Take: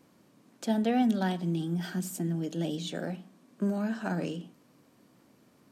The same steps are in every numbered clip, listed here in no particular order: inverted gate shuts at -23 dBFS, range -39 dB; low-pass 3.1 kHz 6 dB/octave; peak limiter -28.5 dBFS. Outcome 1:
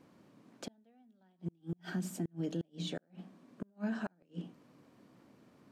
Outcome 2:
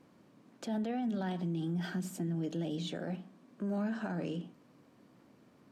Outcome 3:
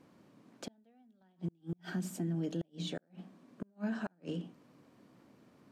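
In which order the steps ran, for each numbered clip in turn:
inverted gate > low-pass > peak limiter; low-pass > peak limiter > inverted gate; low-pass > inverted gate > peak limiter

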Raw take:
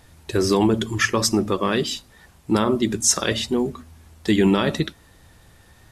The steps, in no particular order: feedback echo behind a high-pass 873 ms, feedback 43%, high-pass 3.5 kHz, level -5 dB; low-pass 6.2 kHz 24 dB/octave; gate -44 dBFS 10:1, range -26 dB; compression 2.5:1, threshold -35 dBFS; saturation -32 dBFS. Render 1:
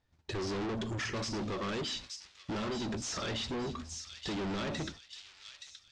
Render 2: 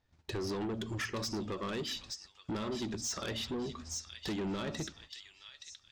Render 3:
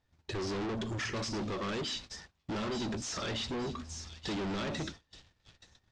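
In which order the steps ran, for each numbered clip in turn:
saturation > low-pass > gate > feedback echo behind a high-pass > compression; gate > low-pass > compression > feedback echo behind a high-pass > saturation; saturation > compression > feedback echo behind a high-pass > gate > low-pass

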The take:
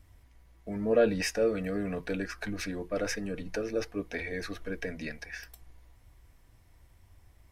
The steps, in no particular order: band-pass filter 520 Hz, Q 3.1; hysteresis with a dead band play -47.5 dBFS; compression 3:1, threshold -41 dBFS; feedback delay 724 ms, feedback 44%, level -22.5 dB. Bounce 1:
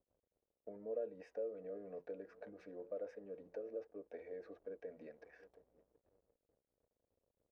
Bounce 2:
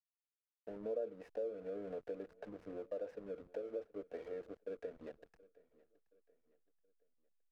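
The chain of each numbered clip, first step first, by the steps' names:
feedback delay > hysteresis with a dead band > compression > band-pass filter; band-pass filter > hysteresis with a dead band > compression > feedback delay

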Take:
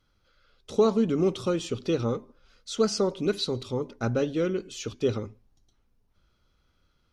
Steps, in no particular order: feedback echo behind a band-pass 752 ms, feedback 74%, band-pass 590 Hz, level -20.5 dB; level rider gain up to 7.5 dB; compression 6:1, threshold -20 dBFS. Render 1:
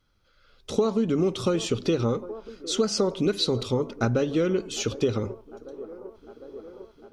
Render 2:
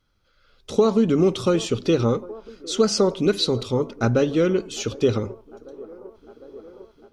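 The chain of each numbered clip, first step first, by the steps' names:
level rider > feedback echo behind a band-pass > compression; feedback echo behind a band-pass > compression > level rider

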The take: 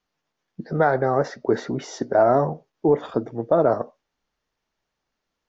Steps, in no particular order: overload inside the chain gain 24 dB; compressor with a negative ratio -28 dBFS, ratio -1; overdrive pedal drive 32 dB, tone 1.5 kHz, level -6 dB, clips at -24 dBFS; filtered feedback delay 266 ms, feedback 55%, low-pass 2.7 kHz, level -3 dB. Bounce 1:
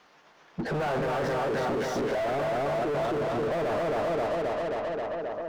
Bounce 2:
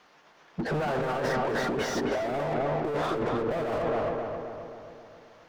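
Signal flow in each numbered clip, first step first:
filtered feedback delay > overload inside the chain > compressor with a negative ratio > overdrive pedal; overload inside the chain > overdrive pedal > filtered feedback delay > compressor with a negative ratio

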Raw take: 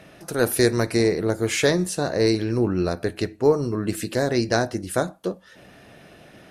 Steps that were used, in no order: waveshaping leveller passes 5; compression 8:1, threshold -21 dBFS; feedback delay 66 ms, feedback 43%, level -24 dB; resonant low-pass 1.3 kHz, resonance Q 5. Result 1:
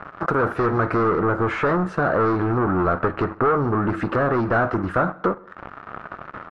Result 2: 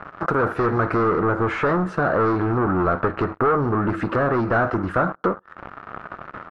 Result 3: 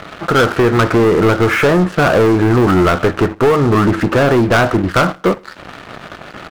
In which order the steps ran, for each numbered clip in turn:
waveshaping leveller > feedback delay > compression > resonant low-pass; feedback delay > waveshaping leveller > compression > resonant low-pass; compression > resonant low-pass > waveshaping leveller > feedback delay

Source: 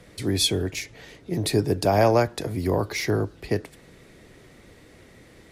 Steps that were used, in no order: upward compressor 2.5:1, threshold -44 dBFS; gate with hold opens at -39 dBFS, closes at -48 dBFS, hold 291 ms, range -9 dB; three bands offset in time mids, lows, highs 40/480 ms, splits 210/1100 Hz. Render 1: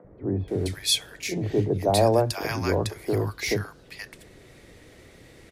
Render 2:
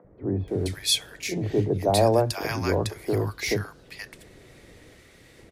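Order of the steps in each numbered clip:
upward compressor > gate with hold > three bands offset in time; gate with hold > upward compressor > three bands offset in time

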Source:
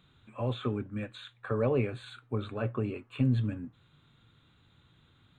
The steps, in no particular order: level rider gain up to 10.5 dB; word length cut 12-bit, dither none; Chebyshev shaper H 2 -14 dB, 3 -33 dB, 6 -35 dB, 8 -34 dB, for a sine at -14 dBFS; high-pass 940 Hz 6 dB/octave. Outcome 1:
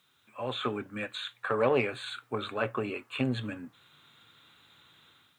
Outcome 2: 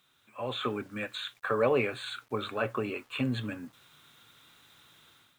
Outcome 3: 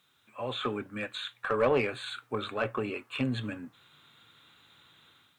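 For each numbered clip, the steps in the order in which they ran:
Chebyshev shaper > level rider > word length cut > high-pass; high-pass > Chebyshev shaper > word length cut > level rider; level rider > word length cut > high-pass > Chebyshev shaper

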